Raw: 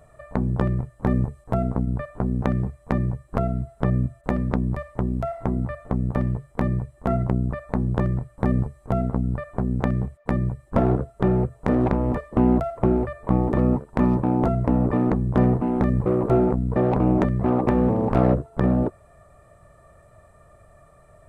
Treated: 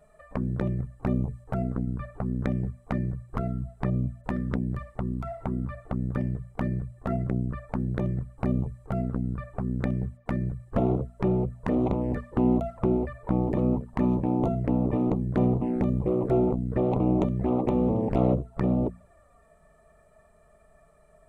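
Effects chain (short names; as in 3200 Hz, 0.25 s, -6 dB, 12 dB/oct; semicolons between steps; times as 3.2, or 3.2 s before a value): envelope flanger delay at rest 5 ms, full sweep at -17 dBFS; notches 60/120/180/240 Hz; gain -3 dB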